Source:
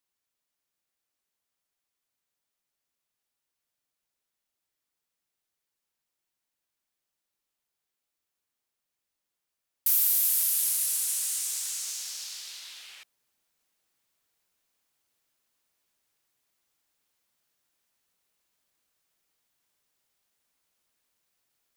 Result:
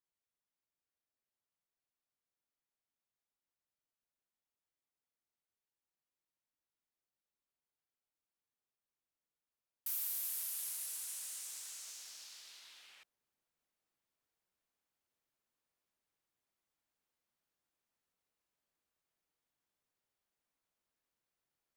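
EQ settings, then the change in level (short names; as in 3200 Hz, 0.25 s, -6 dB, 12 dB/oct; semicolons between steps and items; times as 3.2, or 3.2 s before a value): high shelf 2200 Hz -8.5 dB; -7.0 dB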